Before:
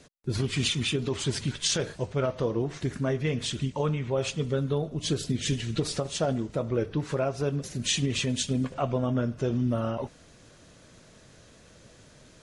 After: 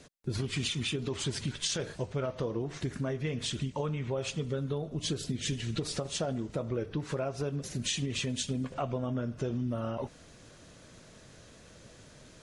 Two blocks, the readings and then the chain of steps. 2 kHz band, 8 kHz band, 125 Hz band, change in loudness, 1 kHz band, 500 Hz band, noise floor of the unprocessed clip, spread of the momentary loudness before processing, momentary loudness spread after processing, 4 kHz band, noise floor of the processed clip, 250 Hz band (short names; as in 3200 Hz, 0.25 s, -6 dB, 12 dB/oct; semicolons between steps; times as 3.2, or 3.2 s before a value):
-4.5 dB, -4.5 dB, -5.0 dB, -5.0 dB, -5.0 dB, -6.0 dB, -55 dBFS, 4 LU, 21 LU, -4.5 dB, -55 dBFS, -5.5 dB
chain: compressor 3:1, threshold -31 dBFS, peak gain reduction 7.5 dB